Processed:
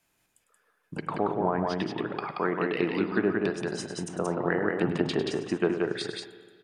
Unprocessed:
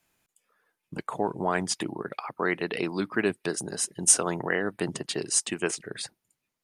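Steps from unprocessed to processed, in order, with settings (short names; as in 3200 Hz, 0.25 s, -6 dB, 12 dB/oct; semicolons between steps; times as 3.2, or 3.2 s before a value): 1.06–2.16 polynomial smoothing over 15 samples; 4.81–6.03 sample leveller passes 1; treble ducked by the level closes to 980 Hz, closed at -21.5 dBFS; on a send: tapped delay 0.102/0.179 s -11.5/-3 dB; on the sum: spring tank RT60 1.7 s, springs 38/51 ms, chirp 80 ms, DRR 11 dB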